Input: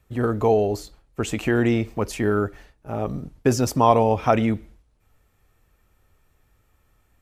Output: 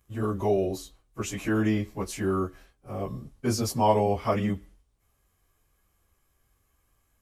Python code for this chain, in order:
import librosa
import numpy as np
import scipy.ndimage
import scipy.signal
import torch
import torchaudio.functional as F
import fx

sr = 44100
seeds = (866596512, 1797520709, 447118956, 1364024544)

y = fx.pitch_bins(x, sr, semitones=-1.5)
y = fx.high_shelf(y, sr, hz=5700.0, db=10.0)
y = fx.small_body(y, sr, hz=(1100.0, 3100.0), ring_ms=45, db=7)
y = F.gain(torch.from_numpy(y), -4.5).numpy()